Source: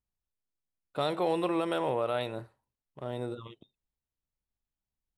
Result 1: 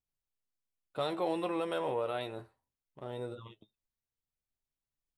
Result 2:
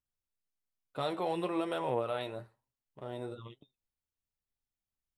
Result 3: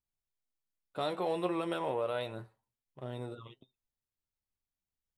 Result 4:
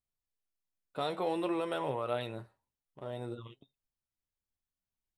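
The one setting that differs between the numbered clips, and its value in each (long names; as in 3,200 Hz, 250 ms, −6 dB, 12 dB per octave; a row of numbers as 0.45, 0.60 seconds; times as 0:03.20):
flanger, speed: 0.2, 1.1, 0.3, 0.54 Hertz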